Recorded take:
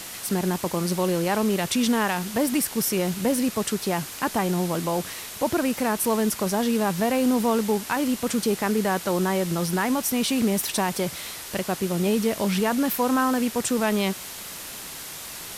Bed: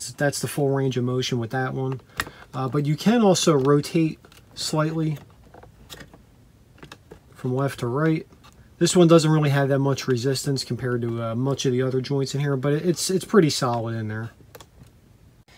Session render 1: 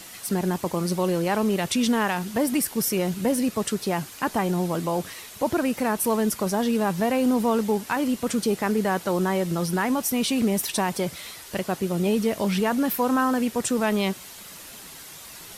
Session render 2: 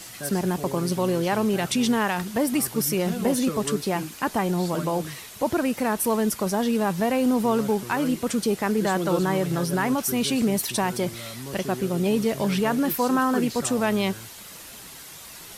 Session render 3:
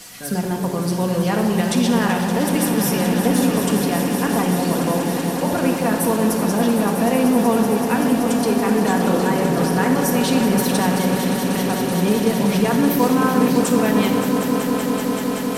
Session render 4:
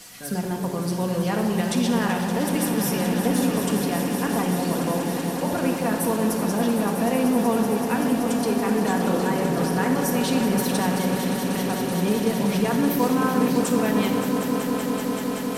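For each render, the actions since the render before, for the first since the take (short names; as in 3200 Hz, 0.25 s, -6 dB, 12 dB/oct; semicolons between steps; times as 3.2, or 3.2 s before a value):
denoiser 7 dB, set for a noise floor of -38 dBFS
add bed -13.5 dB
swelling echo 0.19 s, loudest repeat 5, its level -10.5 dB; shoebox room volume 2300 m³, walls mixed, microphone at 1.8 m
gain -4.5 dB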